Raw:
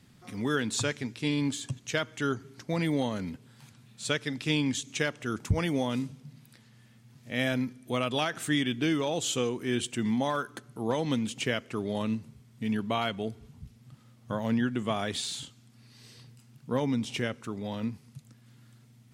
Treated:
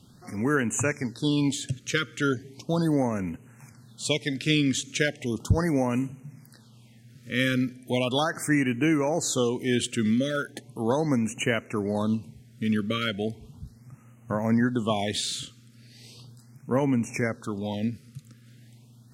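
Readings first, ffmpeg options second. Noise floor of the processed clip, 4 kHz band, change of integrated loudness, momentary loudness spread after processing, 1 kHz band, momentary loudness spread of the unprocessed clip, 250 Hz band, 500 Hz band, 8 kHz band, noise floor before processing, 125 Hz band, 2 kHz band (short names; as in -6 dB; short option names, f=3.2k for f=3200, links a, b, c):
-54 dBFS, +2.5 dB, +4.0 dB, 10 LU, +2.5 dB, 9 LU, +4.5 dB, +4.0 dB, +4.5 dB, -58 dBFS, +4.5 dB, +4.0 dB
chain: -af "afftfilt=real='re*(1-between(b*sr/1024,790*pow(4300/790,0.5+0.5*sin(2*PI*0.37*pts/sr))/1.41,790*pow(4300/790,0.5+0.5*sin(2*PI*0.37*pts/sr))*1.41))':imag='im*(1-between(b*sr/1024,790*pow(4300/790,0.5+0.5*sin(2*PI*0.37*pts/sr))/1.41,790*pow(4300/790,0.5+0.5*sin(2*PI*0.37*pts/sr))*1.41))':win_size=1024:overlap=0.75,volume=4.5dB"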